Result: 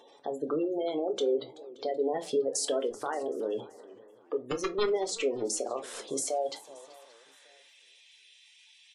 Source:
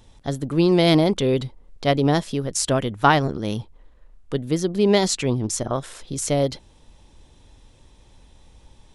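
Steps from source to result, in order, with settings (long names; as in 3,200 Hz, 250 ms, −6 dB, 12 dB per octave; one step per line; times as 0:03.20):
high-pass filter sweep 480 Hz → 2,500 Hz, 0:06.02–0:07.84
0:02.14–0:03.04: leveller curve on the samples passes 2
downward compressor 12 to 1, threshold −26 dBFS, peak gain reduction 19.5 dB
brickwall limiter −22.5 dBFS, peak gain reduction 10 dB
0:04.34–0:04.87: wrap-around overflow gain 24 dB
gate on every frequency bin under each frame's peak −20 dB strong
repeating echo 576 ms, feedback 33%, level −24 dB
convolution reverb RT60 0.25 s, pre-delay 3 ms, DRR 5 dB
feedback echo with a swinging delay time 377 ms, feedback 31%, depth 171 cents, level −20 dB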